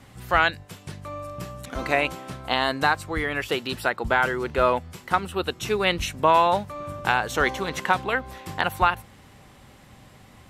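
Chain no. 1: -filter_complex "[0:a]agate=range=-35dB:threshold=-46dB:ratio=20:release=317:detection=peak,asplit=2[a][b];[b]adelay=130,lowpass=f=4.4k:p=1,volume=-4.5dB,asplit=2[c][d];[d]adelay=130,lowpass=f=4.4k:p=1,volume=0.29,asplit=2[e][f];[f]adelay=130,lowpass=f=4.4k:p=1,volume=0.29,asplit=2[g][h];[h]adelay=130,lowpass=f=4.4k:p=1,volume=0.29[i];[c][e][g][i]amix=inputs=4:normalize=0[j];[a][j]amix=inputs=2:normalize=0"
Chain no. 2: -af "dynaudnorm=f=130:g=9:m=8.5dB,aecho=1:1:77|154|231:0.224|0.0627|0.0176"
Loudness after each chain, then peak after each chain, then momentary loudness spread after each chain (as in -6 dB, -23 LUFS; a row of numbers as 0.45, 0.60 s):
-23.0, -20.5 LUFS; -3.5, -1.0 dBFS; 13, 13 LU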